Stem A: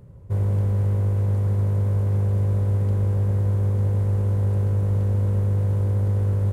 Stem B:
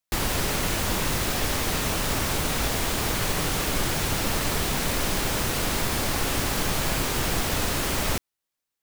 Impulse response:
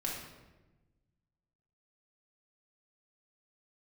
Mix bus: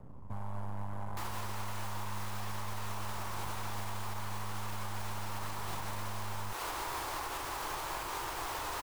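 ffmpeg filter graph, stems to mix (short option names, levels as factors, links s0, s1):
-filter_complex "[0:a]flanger=delay=0.6:depth=4.3:regen=-35:speed=0.44:shape=sinusoidal,aeval=exprs='max(val(0),0)':c=same,volume=0.794,asplit=2[s0][s1];[s1]volume=0.224[s2];[1:a]lowshelf=f=270:t=q:w=3:g=-8,adelay=1050,volume=0.355[s3];[2:a]atrim=start_sample=2205[s4];[s2][s4]afir=irnorm=-1:irlink=0[s5];[s0][s3][s5]amix=inputs=3:normalize=0,equalizer=f=960:w=1.4:g=13.5,acrossover=split=190|740[s6][s7][s8];[s6]acompressor=threshold=0.0282:ratio=4[s9];[s7]acompressor=threshold=0.00316:ratio=4[s10];[s8]acompressor=threshold=0.0178:ratio=4[s11];[s9][s10][s11]amix=inputs=3:normalize=0,alimiter=level_in=1.58:limit=0.0631:level=0:latency=1:release=122,volume=0.631"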